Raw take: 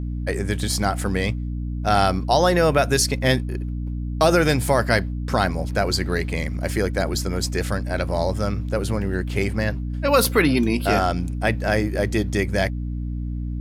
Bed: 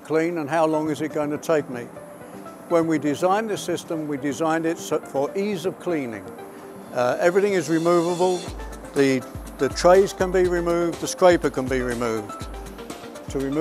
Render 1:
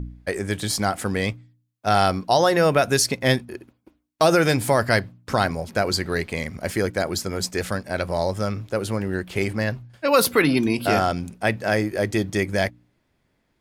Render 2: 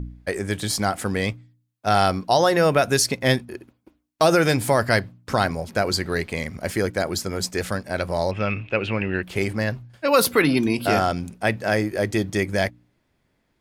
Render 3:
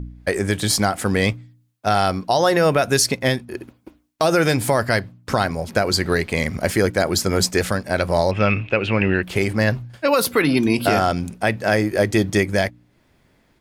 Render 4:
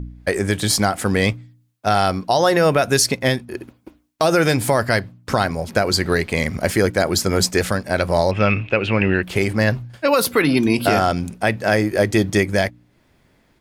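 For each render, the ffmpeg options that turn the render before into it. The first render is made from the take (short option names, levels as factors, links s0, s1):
-af "bandreject=f=60:t=h:w=4,bandreject=f=120:t=h:w=4,bandreject=f=180:t=h:w=4,bandreject=f=240:t=h:w=4,bandreject=f=300:t=h:w=4"
-filter_complex "[0:a]asettb=1/sr,asplit=3[s0][s1][s2];[s0]atrim=end=8.314[s3];[s1]atrim=start=8.31:end=9.23,asetpts=PTS-STARTPTS,afade=t=in:d=0.004:c=qsin,afade=t=out:st=0.916:d=0.004:c=qsin,lowpass=f=2600:t=q:w=12[s4];[s2]atrim=start=9.226[s5];[s3][s4]acrossfade=d=0.004:c1=hsin:c2=qsin[s6];[s6][s5]acrossfade=d=0.004:c1=qsin:c2=hsin"
-af "dynaudnorm=f=140:g=3:m=3.16,alimiter=limit=0.501:level=0:latency=1:release=318"
-af "volume=1.12"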